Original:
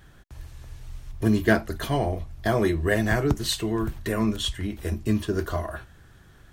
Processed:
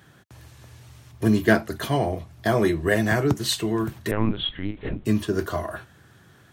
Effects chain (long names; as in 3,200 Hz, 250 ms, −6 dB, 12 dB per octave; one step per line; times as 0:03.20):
high-pass filter 96 Hz 24 dB per octave
0:04.11–0:05.05: linear-prediction vocoder at 8 kHz pitch kept
level +2 dB